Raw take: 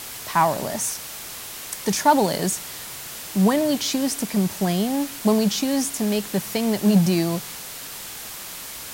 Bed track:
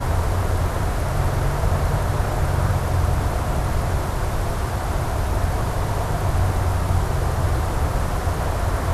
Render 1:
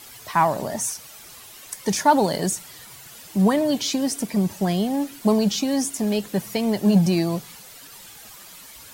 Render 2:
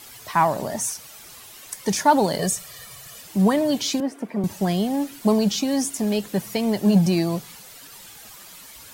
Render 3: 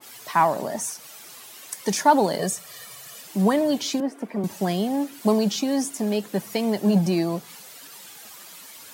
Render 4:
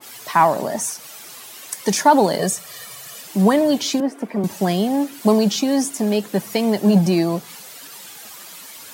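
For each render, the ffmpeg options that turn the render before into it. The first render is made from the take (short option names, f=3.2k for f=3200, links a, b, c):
-af "afftdn=nr=11:nf=-36"
-filter_complex "[0:a]asettb=1/sr,asplit=3[a][b][c];[a]atrim=end=2.394[d];[b]atrim=start=2.39:end=3.21,asetpts=PTS-STARTPTS,afade=t=in:d=0.004:c=qsin,afade=t=out:st=0.816:d=0.004:c=qsin,aecho=1:1:1.7:0.66,atrim=end_sample=36162[e];[c]atrim=start=3.206[f];[d][e]acrossfade=d=0.004:c1=hsin:c2=qsin[g];[g][f]acrossfade=d=0.004:c1=qsin:c2=hsin,asettb=1/sr,asplit=3[h][i][j];[h]atrim=end=4.004[k];[i]atrim=start=4:end=4.44,asetpts=PTS-STARTPTS,afade=t=in:d=0.004:c=qsin,afade=t=out:st=0.436:d=0.004:c=qsin,acrossover=split=200 2200:gain=0.141 1 0.1[l][m][n];[l][m][n]amix=inputs=3:normalize=0[o];[j]atrim=start=4.436[p];[k][o]acrossfade=d=0.004:c1=hsin:c2=qsin[q];[q][p]acrossfade=d=0.004:c1=qsin:c2=hsin"
-af "highpass=190,adynamicequalizer=threshold=0.01:dfrequency=1900:dqfactor=0.7:tfrequency=1900:tqfactor=0.7:attack=5:release=100:ratio=0.375:range=2.5:mode=cutabove:tftype=highshelf"
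-af "volume=5dB,alimiter=limit=-3dB:level=0:latency=1"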